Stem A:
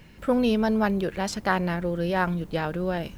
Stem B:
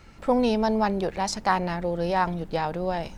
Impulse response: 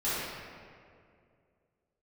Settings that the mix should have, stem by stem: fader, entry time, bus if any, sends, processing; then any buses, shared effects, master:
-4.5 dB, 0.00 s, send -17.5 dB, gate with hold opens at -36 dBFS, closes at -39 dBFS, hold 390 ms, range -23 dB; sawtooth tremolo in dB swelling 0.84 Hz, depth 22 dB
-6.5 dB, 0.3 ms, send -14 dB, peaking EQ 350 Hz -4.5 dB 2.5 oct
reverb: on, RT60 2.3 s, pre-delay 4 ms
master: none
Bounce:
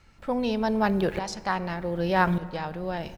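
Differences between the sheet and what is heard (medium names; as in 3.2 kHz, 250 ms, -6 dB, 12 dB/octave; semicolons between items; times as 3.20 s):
stem A -4.5 dB -> +2.5 dB; reverb return -9.5 dB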